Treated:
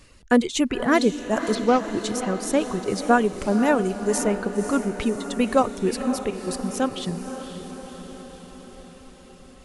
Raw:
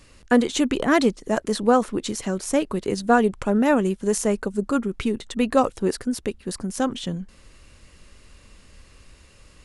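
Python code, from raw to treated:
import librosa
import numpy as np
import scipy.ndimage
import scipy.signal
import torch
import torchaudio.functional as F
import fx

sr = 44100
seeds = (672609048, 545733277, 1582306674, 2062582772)

y = fx.cvsd(x, sr, bps=32000, at=(1.55, 2.02))
y = fx.dereverb_blind(y, sr, rt60_s=1.2)
y = fx.echo_diffused(y, sr, ms=530, feedback_pct=63, wet_db=-10)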